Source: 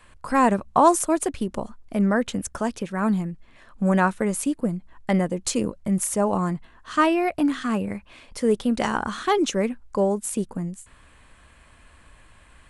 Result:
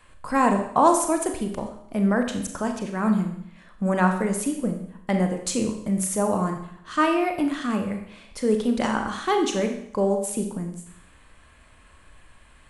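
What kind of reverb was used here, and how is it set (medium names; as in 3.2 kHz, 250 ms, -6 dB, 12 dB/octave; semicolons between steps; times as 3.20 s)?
Schroeder reverb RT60 0.7 s, combs from 29 ms, DRR 4.5 dB; trim -2 dB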